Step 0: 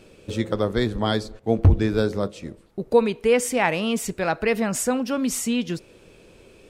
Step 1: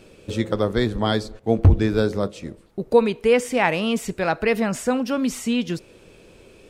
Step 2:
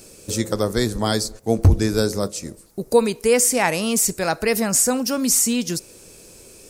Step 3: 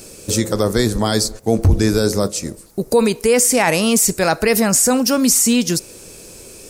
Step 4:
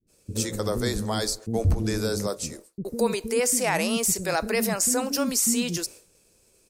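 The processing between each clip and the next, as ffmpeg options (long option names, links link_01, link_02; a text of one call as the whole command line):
ffmpeg -i in.wav -filter_complex "[0:a]acrossover=split=4300[link_01][link_02];[link_02]acompressor=threshold=-35dB:ratio=4:attack=1:release=60[link_03];[link_01][link_03]amix=inputs=2:normalize=0,volume=1.5dB" out.wav
ffmpeg -i in.wav -af "aexciter=amount=8.1:drive=3.6:freq=4700" out.wav
ffmpeg -i in.wav -af "alimiter=limit=-11.5dB:level=0:latency=1:release=21,volume=6.5dB" out.wav
ffmpeg -i in.wav -filter_complex "[0:a]agate=range=-33dB:threshold=-28dB:ratio=3:detection=peak,acrossover=split=300[link_01][link_02];[link_02]adelay=70[link_03];[link_01][link_03]amix=inputs=2:normalize=0,volume=-8.5dB" out.wav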